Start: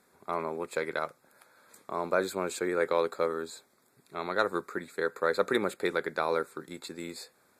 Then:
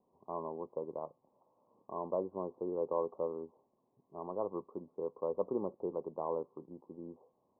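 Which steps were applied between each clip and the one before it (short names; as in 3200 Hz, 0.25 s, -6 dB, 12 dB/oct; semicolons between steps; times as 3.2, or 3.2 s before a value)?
Chebyshev low-pass 1100 Hz, order 8; gain -6 dB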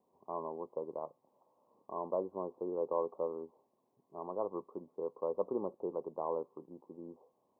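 low shelf 180 Hz -8.5 dB; gain +1 dB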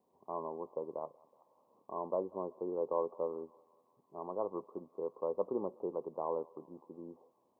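thinning echo 0.186 s, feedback 82%, high-pass 690 Hz, level -22 dB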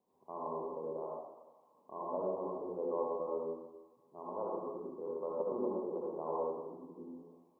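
reverb RT60 1.0 s, pre-delay 52 ms, DRR -4.5 dB; gain -5.5 dB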